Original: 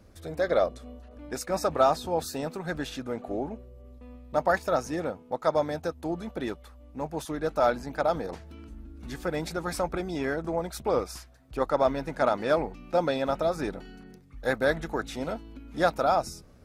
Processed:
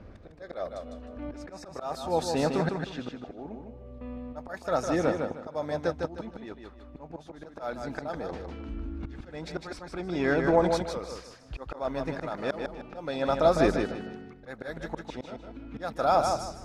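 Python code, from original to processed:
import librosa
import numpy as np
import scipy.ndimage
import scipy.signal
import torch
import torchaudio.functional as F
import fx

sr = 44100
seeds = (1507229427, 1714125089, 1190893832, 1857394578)

p1 = fx.env_lowpass(x, sr, base_hz=2600.0, full_db=-19.5)
p2 = fx.auto_swell(p1, sr, attack_ms=766.0)
p3 = p2 + fx.echo_feedback(p2, sr, ms=154, feedback_pct=28, wet_db=-5, dry=0)
y = p3 * 10.0 ** (7.5 / 20.0)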